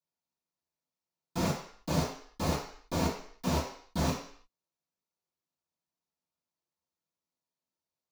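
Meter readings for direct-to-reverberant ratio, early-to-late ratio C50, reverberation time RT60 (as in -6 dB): -13.5 dB, 5.0 dB, 0.55 s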